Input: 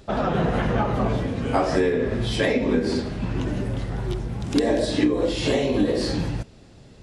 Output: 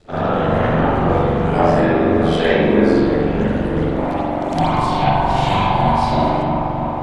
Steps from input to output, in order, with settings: band-stop 5.4 kHz, Q 29; feedback echo behind a low-pass 317 ms, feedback 78%, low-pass 1.5 kHz, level -6 dB; ring modulator 42 Hz, from 3.94 s 450 Hz; bass shelf 150 Hz -3.5 dB; reverberation RT60 1.0 s, pre-delay 43 ms, DRR -9.5 dB; trim -1 dB

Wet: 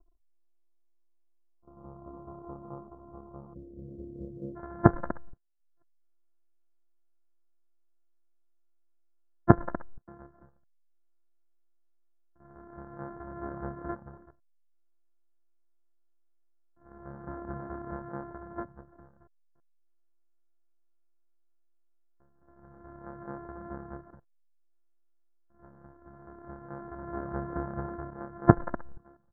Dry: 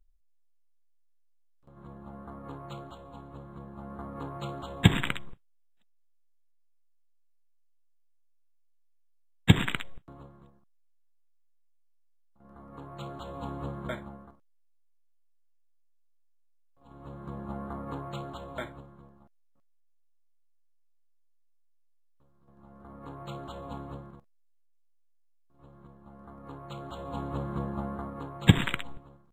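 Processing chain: sorted samples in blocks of 128 samples; reverb removal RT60 0.52 s; elliptic low-pass 1.2 kHz, stop band 40 dB, from 3.53 s 530 Hz, from 4.55 s 1.6 kHz; trim +1 dB

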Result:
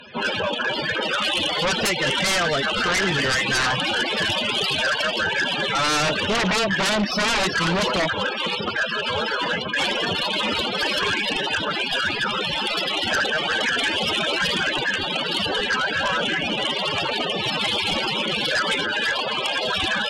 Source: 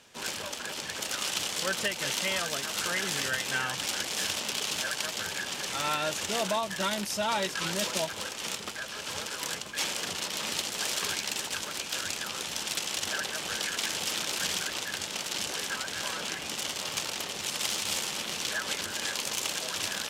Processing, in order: CVSD coder 32 kbps; loudest bins only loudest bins 32; 18.83–19.68 s: high-pass 380 Hz 6 dB/octave; sine folder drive 13 dB, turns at -19.5 dBFS; trim +2 dB

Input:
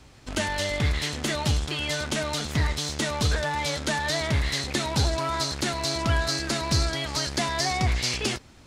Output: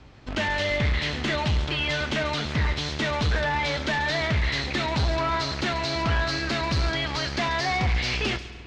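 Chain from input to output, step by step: dynamic bell 2.5 kHz, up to +5 dB, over -43 dBFS, Q 0.83; hard clipper -22 dBFS, distortion -12 dB; distance through air 170 m; feedback echo behind a high-pass 138 ms, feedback 32%, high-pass 4.7 kHz, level -8 dB; spring tank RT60 2.4 s, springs 49 ms, chirp 45 ms, DRR 14 dB; trim +2.5 dB

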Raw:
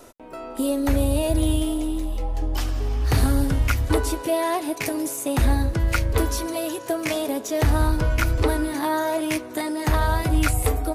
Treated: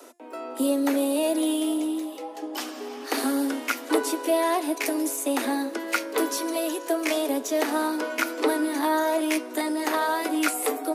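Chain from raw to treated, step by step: steep high-pass 240 Hz 96 dB/octave; de-hum 348 Hz, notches 40

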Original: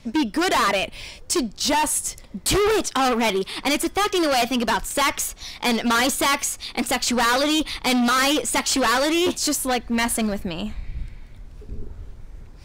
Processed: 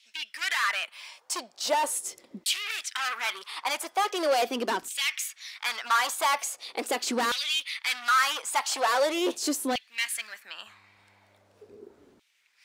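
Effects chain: LFO high-pass saw down 0.41 Hz 270–3100 Hz; 10.66–11.76 s: mains buzz 100 Hz, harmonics 28, -60 dBFS -6 dB/octave; trim -8 dB

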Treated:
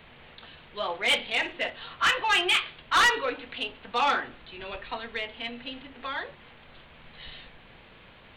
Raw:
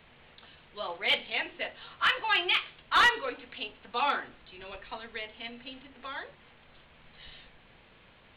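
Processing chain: saturation -22.5 dBFS, distortion -12 dB; 1.26–1.70 s: flutter echo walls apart 9.5 m, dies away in 0.24 s; trim +6 dB

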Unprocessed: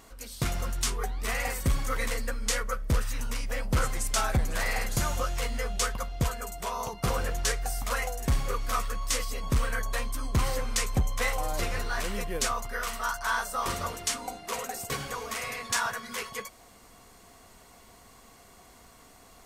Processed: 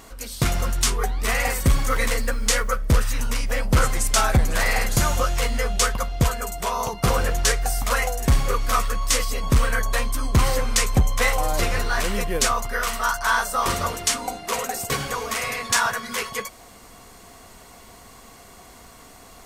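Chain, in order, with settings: 1.77–2.76 s: word length cut 10-bit, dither none; trim +8 dB

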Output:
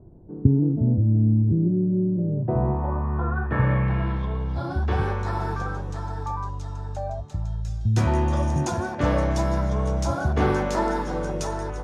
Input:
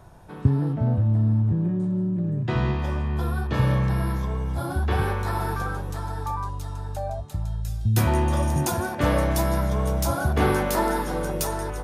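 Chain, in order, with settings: low-pass sweep 340 Hz -> 6.6 kHz, 1.83–4.94 s; treble shelf 3 kHz -6 dB, from 2.03 s -11.5 dB

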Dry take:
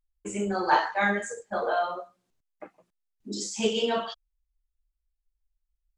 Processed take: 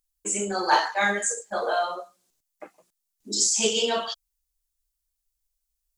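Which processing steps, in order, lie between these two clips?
tone controls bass -7 dB, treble +14 dB; trim +1.5 dB

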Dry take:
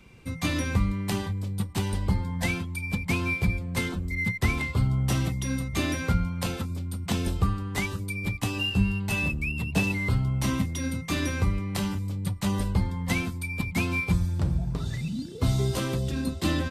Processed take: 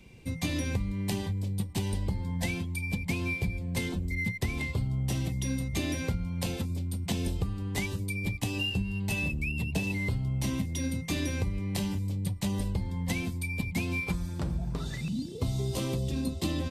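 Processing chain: peaking EQ 1.3 kHz -12 dB 0.67 oct, from 14.07 s 100 Hz, from 15.08 s 1.5 kHz; compression 10:1, threshold -26 dBFS, peak gain reduction 10.5 dB

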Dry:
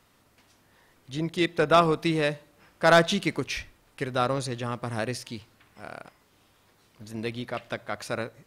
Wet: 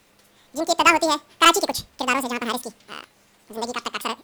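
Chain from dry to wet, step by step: speed mistake 7.5 ips tape played at 15 ips; trim +5 dB

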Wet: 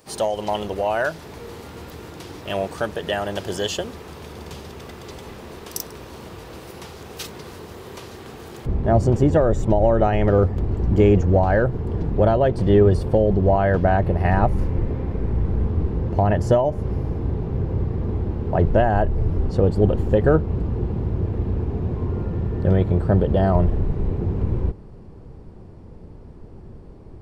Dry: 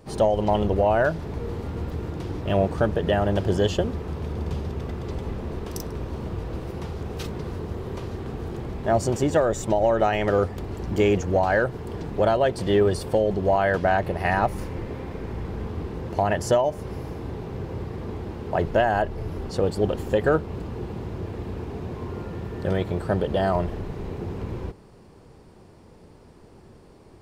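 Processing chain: tilt EQ +3 dB/octave, from 8.65 s -3 dB/octave

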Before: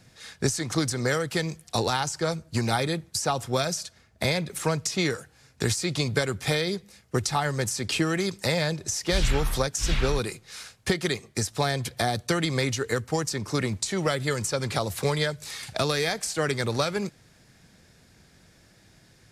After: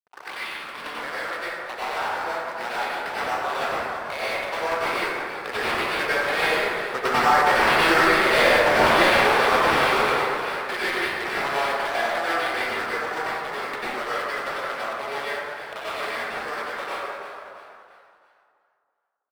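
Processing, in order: tape start-up on the opening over 0.88 s; Doppler pass-by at 8.29 s, 10 m/s, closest 9 m; high-pass 670 Hz 12 dB/octave; in parallel at 0 dB: compression, threshold -43 dBFS, peak gain reduction 18 dB; on the sum: sample-rate reducer 6.7 kHz, jitter 20%; crossover distortion -48.5 dBFS; overdrive pedal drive 17 dB, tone 1.7 kHz, clips at -12.5 dBFS; on a send: frequency-shifting echo 335 ms, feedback 42%, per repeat +75 Hz, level -12.5 dB; on the sum: plate-style reverb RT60 2.2 s, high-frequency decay 0.35×, pre-delay 80 ms, DRR -9.5 dB; modulated delay 330 ms, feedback 32%, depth 133 cents, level -18 dB

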